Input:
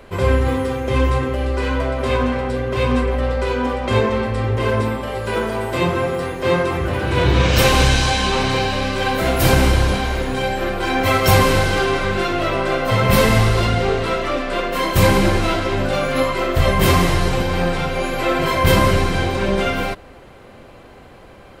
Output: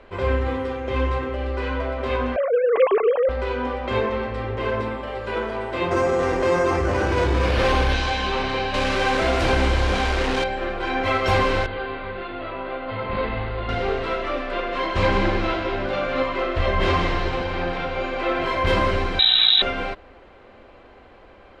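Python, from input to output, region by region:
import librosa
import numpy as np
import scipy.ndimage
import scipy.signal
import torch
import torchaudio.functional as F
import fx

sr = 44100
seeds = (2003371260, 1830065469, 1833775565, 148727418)

y = fx.chain(x, sr, fx.sine_speech(),
    fx.low_shelf(hz=490.0, db=10.5), at=(2.36, 3.29))
y = fx.chain(y, sr, fx.high_shelf(hz=3200.0, db=-7.0),
    fx.resample_bad(factor=6, down='none', up='hold'),
    fx.env_flatten(amount_pct=70), at=(5.91, 7.93))
y = fx.chain(y, sr, fx.delta_mod(bps=64000, step_db=-17.0),
    fx.env_flatten(amount_pct=50), at=(8.74, 10.44))
y = fx.chain(y, sr, fx.median_filter(points=9),
    fx.brickwall_lowpass(high_hz=4800.0),
    fx.comb_fb(f0_hz=52.0, decay_s=0.31, harmonics='all', damping=0.0, mix_pct=80), at=(11.66, 13.69))
y = fx.chain(y, sr, fx.lowpass(hz=6500.0, slope=12),
    fx.echo_single(ms=161, db=-9.0), at=(14.51, 18.44))
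y = fx.chain(y, sr, fx.low_shelf(hz=200.0, db=12.0),
    fx.freq_invert(carrier_hz=3900),
    fx.env_flatten(amount_pct=70), at=(19.19, 19.62))
y = scipy.signal.sosfilt(scipy.signal.butter(2, 3600.0, 'lowpass', fs=sr, output='sos'), y)
y = fx.peak_eq(y, sr, hz=140.0, db=-11.5, octaves=1.0)
y = y * librosa.db_to_amplitude(-4.0)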